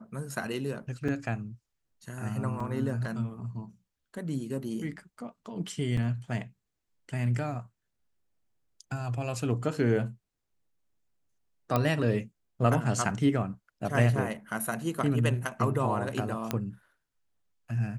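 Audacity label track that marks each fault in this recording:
1.080000	1.080000	dropout 4.3 ms
2.600000	2.600000	dropout 3.7 ms
5.970000	5.970000	dropout 4.3 ms
11.760000	11.760000	pop -13 dBFS
16.510000	16.510000	pop -13 dBFS

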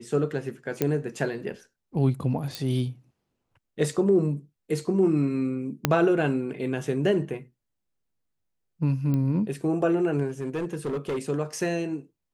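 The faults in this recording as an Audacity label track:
0.820000	0.820000	pop -10 dBFS
2.550000	2.550000	pop
5.850000	5.850000	pop -5 dBFS
9.140000	9.140000	pop -18 dBFS
10.280000	11.190000	clipped -25 dBFS

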